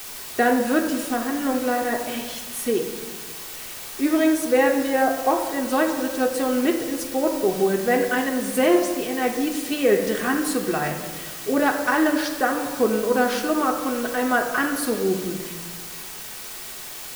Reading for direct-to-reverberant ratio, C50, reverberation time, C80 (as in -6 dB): 1.5 dB, 7.0 dB, 1.6 s, 8.0 dB